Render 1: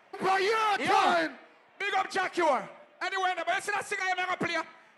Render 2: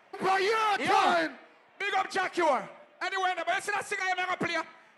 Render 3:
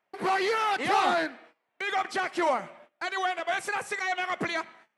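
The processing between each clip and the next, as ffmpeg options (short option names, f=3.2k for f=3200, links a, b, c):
-af anull
-af "agate=range=-19dB:threshold=-53dB:ratio=16:detection=peak"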